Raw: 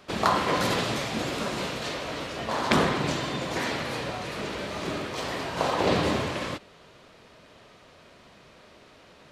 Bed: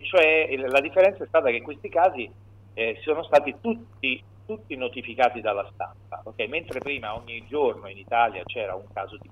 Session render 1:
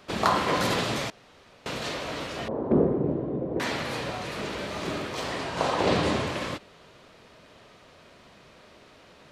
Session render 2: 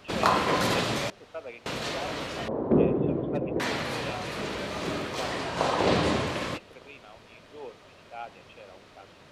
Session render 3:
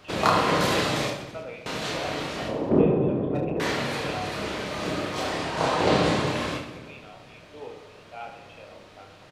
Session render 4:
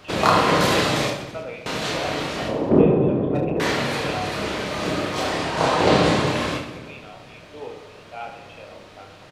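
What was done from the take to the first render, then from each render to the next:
1.10–1.66 s: room tone; 2.48–3.60 s: resonant low-pass 430 Hz, resonance Q 1.9; 5.28–6.27 s: low-pass 11 kHz 24 dB/octave
add bed -19 dB
on a send: reverse bouncing-ball echo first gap 30 ms, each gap 1.4×, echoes 5; on the sum: simulated room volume 1800 m³, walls mixed, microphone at 0.51 m
trim +4.5 dB; peak limiter -2 dBFS, peak gain reduction 2 dB

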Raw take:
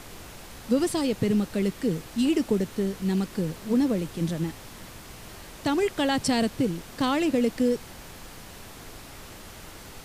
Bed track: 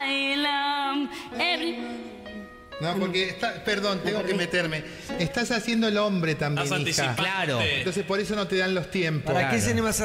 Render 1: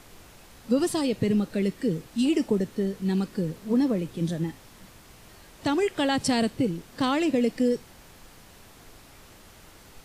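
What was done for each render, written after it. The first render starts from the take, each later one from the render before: noise print and reduce 7 dB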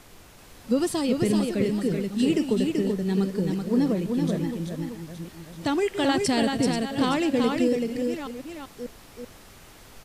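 chunks repeated in reverse 591 ms, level -10 dB; delay 383 ms -4 dB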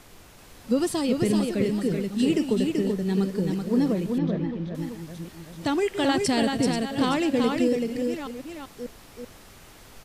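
4.18–4.75 s: distance through air 260 m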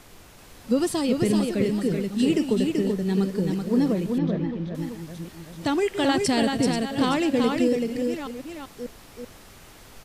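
trim +1 dB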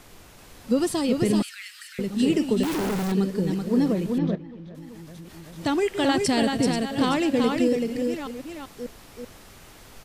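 1.42–1.99 s: steep high-pass 1.4 kHz 48 dB/octave; 2.63–3.12 s: companded quantiser 2-bit; 4.35–5.56 s: compression 5:1, threshold -38 dBFS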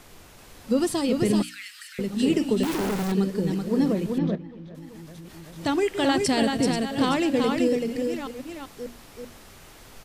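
hum notches 60/120/180/240/300 Hz

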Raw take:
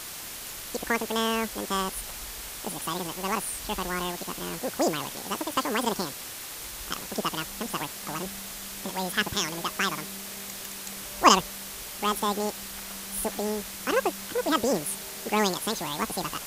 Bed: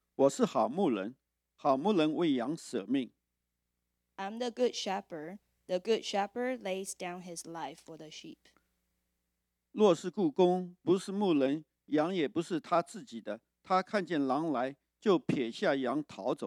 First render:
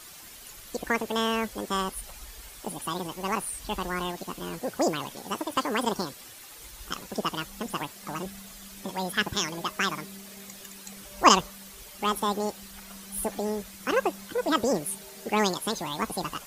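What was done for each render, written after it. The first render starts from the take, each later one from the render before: noise reduction 10 dB, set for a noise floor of -39 dBFS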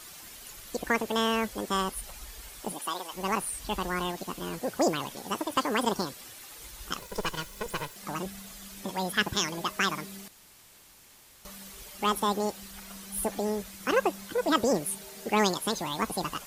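2.72–3.12 s: high-pass 230 Hz -> 820 Hz; 6.99–7.96 s: comb filter that takes the minimum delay 2 ms; 10.28–11.45 s: room tone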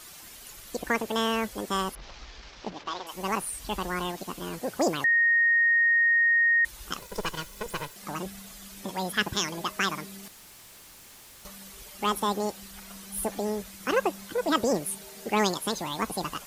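1.95–3.07 s: CVSD coder 32 kbps; 5.04–6.65 s: bleep 1.86 kHz -18.5 dBFS; 10.23–11.48 s: jump at every zero crossing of -50 dBFS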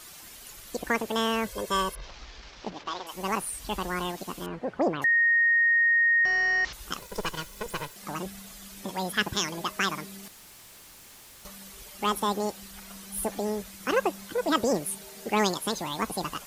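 1.46–2.07 s: comb 1.9 ms, depth 68%; 4.46–5.02 s: low-pass 2.1 kHz; 6.25–6.73 s: one-bit delta coder 32 kbps, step -32.5 dBFS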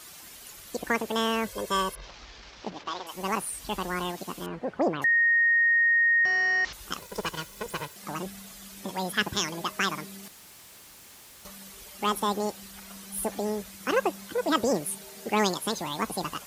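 high-pass 47 Hz; hum notches 60/120 Hz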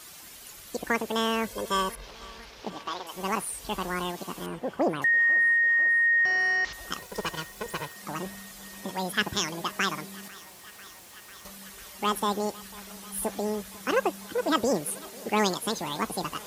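thinning echo 496 ms, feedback 85%, high-pass 220 Hz, level -21.5 dB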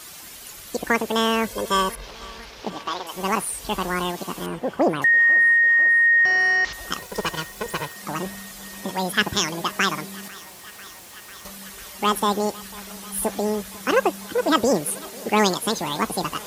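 trim +6 dB

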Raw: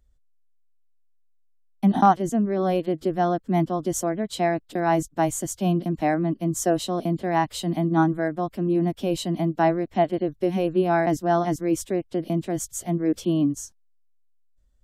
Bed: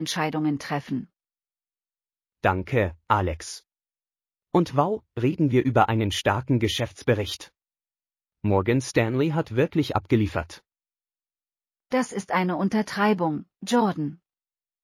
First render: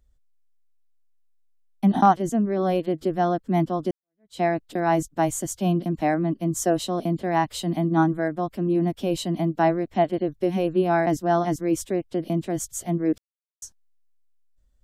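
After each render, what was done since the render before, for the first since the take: 3.91–4.40 s: fade in exponential; 13.18–13.62 s: mute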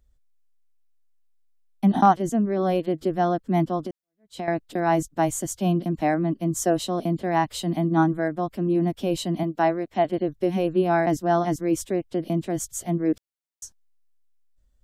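3.79–4.48 s: compression 10:1, threshold -27 dBFS; 9.43–10.05 s: bass shelf 170 Hz -11 dB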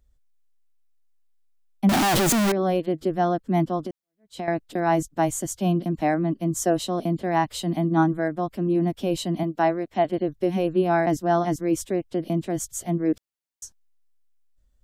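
1.89–2.52 s: one-bit comparator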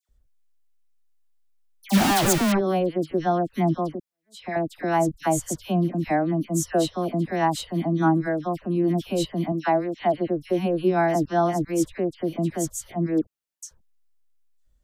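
phase dispersion lows, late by 90 ms, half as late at 1.7 kHz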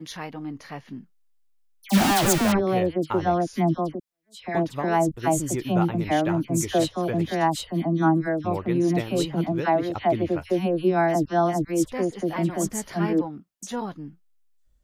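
add bed -9.5 dB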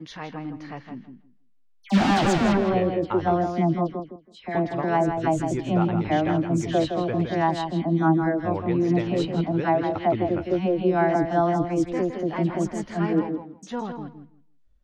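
distance through air 140 m; filtered feedback delay 163 ms, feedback 17%, low-pass 4.8 kHz, level -7 dB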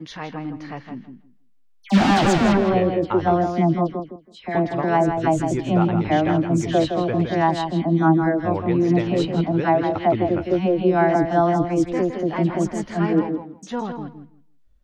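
trim +3.5 dB

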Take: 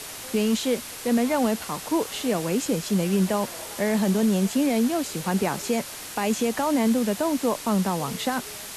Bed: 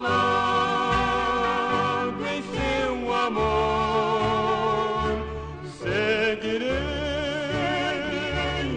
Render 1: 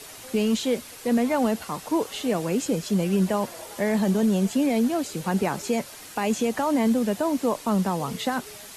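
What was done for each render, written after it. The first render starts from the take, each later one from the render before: noise reduction 7 dB, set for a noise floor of -38 dBFS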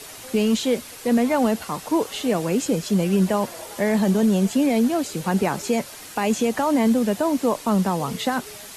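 trim +3 dB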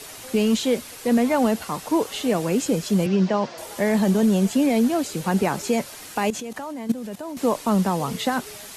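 3.06–3.58 s: elliptic band-pass 130–5500 Hz; 6.30–7.37 s: level held to a coarse grid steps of 16 dB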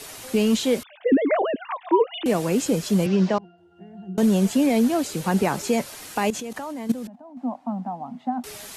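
0.83–2.26 s: formants replaced by sine waves; 3.38–4.18 s: pitch-class resonator F, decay 0.47 s; 7.07–8.44 s: two resonant band-passes 430 Hz, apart 1.6 oct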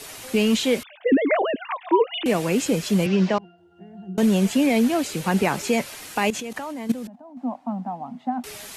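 dynamic bell 2.4 kHz, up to +6 dB, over -46 dBFS, Q 1.3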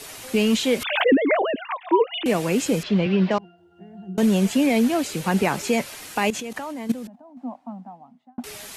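0.76–1.69 s: swell ahead of each attack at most 56 dB/s; 2.83–3.31 s: low-pass 4 kHz 24 dB/octave; 6.81–8.38 s: fade out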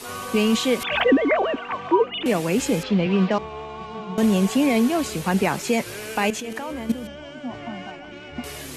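add bed -12 dB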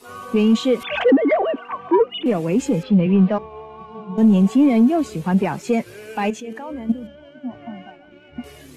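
waveshaping leveller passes 2; spectral contrast expander 1.5:1

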